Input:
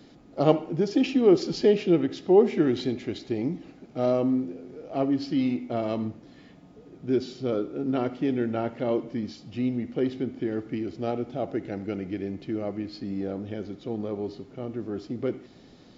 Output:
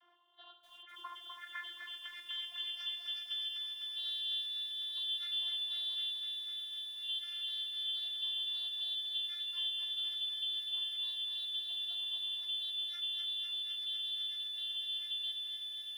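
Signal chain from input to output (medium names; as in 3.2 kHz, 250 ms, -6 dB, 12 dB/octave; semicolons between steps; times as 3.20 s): four frequency bands reordered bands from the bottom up 2413; graphic EQ 250/1000/2000/4000 Hz +5/+4/+8/-7 dB; compression 5:1, threshold -32 dBFS, peak gain reduction 15 dB; echo that smears into a reverb 1442 ms, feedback 47%, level -15 dB; saturation -24.5 dBFS, distortion -23 dB; vocoder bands 32, saw 349 Hz; band-pass sweep 1 kHz -> 3.5 kHz, 0.60–2.96 s; tape echo 274 ms, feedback 82%, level -21 dB, low-pass 2 kHz; bit-crushed delay 251 ms, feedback 80%, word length 10-bit, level -6 dB; trim -4 dB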